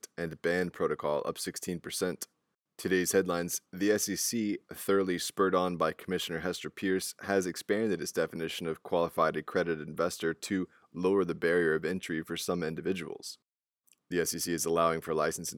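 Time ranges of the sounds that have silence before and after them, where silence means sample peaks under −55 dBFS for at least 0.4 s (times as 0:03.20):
0:02.79–0:13.35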